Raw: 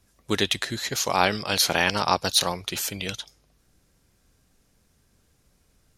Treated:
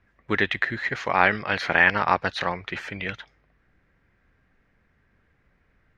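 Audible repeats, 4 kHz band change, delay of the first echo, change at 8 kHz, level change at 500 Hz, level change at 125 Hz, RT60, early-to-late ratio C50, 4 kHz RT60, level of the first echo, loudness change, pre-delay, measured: no echo, -10.0 dB, no echo, under -20 dB, -0.5 dB, -1.0 dB, no reverb, no reverb, no reverb, no echo, +0.5 dB, no reverb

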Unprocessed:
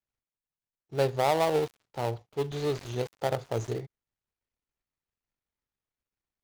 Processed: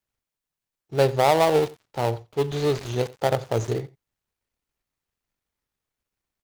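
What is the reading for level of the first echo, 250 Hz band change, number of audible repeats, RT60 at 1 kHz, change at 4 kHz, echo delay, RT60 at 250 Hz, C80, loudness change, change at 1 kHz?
-21.0 dB, +6.5 dB, 1, no reverb, +6.5 dB, 89 ms, no reverb, no reverb, +6.5 dB, +6.5 dB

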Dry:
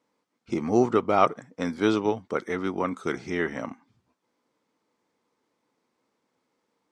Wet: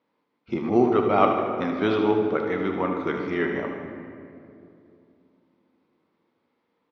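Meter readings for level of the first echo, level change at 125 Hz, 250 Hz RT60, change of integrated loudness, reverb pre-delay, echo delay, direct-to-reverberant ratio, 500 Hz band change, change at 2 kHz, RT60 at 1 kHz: -8.5 dB, +2.0 dB, 3.5 s, +2.5 dB, 5 ms, 76 ms, 2.0 dB, +3.0 dB, +2.0 dB, 2.2 s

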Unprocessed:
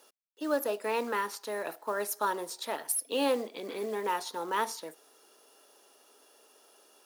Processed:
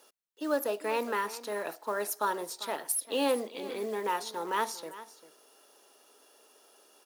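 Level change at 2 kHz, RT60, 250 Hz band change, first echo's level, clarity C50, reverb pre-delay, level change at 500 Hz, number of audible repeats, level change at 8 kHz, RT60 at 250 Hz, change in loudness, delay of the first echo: 0.0 dB, no reverb, 0.0 dB, -16.0 dB, no reverb, no reverb, 0.0 dB, 1, 0.0 dB, no reverb, 0.0 dB, 395 ms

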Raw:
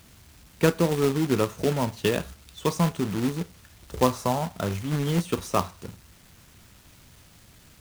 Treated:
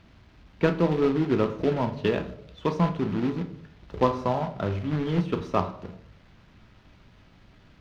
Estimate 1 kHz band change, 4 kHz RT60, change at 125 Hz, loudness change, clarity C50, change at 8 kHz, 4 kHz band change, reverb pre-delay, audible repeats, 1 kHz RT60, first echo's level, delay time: 0.0 dB, 0.45 s, -1.0 dB, -0.5 dB, 14.0 dB, under -15 dB, -6.0 dB, 3 ms, no echo, 0.60 s, no echo, no echo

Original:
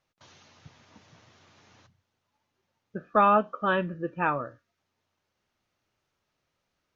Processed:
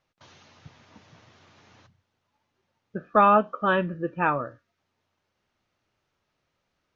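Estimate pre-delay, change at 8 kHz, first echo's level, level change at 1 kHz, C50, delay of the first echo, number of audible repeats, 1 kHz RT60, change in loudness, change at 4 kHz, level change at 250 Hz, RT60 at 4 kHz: no reverb, no reading, no echo, +2.5 dB, no reverb, no echo, no echo, no reverb, +2.5 dB, +2.0 dB, +3.0 dB, no reverb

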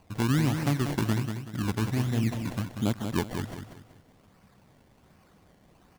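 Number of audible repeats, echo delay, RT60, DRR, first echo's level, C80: 3, 189 ms, no reverb, no reverb, -7.0 dB, no reverb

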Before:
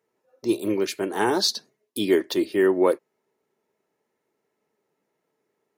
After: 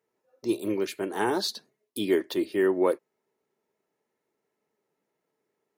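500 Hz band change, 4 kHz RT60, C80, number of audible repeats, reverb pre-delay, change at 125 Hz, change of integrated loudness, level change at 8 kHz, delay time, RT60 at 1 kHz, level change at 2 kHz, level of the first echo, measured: -4.0 dB, no reverb, no reverb, no echo, no reverb, -4.0 dB, -4.5 dB, -8.0 dB, no echo, no reverb, -4.0 dB, no echo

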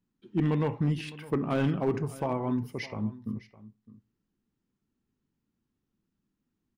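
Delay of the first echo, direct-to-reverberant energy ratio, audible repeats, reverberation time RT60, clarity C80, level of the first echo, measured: 609 ms, no reverb, 1, no reverb, no reverb, -18.5 dB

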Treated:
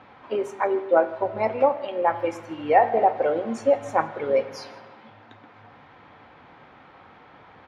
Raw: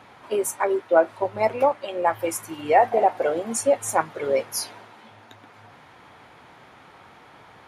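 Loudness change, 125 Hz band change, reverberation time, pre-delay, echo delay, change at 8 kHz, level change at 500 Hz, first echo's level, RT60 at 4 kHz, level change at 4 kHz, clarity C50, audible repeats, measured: -0.5 dB, 0.0 dB, 1.3 s, 4 ms, 161 ms, under -15 dB, -0.5 dB, -23.5 dB, 0.95 s, -6.5 dB, 14.0 dB, 1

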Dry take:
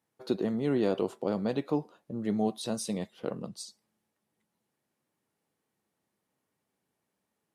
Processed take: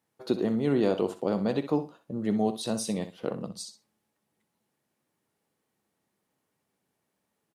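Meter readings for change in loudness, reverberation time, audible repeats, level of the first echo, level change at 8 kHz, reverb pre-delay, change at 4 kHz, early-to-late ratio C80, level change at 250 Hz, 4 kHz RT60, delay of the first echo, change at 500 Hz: +3.0 dB, no reverb, 2, -12.0 dB, +3.0 dB, no reverb, +3.0 dB, no reverb, +3.0 dB, no reverb, 63 ms, +2.5 dB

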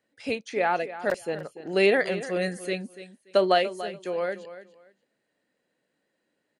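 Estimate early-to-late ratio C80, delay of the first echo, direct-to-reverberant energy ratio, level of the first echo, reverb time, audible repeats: no reverb, 289 ms, no reverb, -14.0 dB, no reverb, 2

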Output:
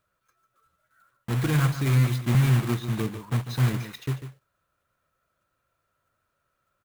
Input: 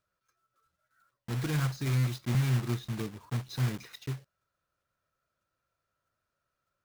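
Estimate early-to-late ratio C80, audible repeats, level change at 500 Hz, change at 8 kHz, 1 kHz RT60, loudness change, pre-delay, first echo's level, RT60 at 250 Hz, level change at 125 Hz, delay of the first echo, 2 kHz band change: no reverb, 1, +7.5 dB, +5.5 dB, no reverb, +7.0 dB, no reverb, -11.0 dB, no reverb, +7.0 dB, 146 ms, +7.0 dB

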